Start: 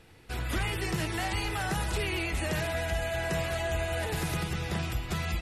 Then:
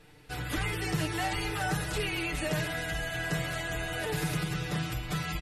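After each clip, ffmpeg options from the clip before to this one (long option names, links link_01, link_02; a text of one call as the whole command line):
ffmpeg -i in.wav -af "aecho=1:1:6.7:0.89,volume=-2.5dB" out.wav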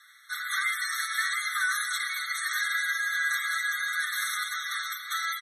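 ffmpeg -i in.wav -af "afftfilt=real='re*eq(mod(floor(b*sr/1024/1100),2),1)':imag='im*eq(mod(floor(b*sr/1024/1100),2),1)':win_size=1024:overlap=0.75,volume=9dB" out.wav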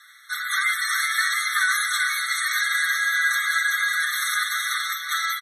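ffmpeg -i in.wav -af "aecho=1:1:376:0.562,volume=5.5dB" out.wav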